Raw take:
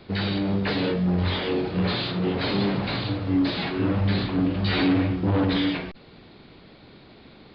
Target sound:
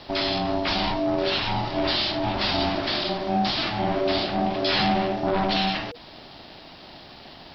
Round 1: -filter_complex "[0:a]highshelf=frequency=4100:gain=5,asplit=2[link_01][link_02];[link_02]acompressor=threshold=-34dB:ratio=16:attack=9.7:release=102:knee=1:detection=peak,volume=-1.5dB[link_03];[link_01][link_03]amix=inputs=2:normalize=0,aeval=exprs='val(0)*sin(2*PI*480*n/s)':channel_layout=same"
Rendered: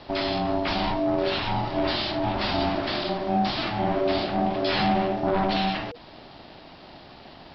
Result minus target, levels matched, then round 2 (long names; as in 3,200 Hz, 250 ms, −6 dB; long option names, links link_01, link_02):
8,000 Hz band −5.5 dB
-filter_complex "[0:a]highshelf=frequency=4100:gain=16.5,asplit=2[link_01][link_02];[link_02]acompressor=threshold=-34dB:ratio=16:attack=9.7:release=102:knee=1:detection=peak,volume=-1.5dB[link_03];[link_01][link_03]amix=inputs=2:normalize=0,aeval=exprs='val(0)*sin(2*PI*480*n/s)':channel_layout=same"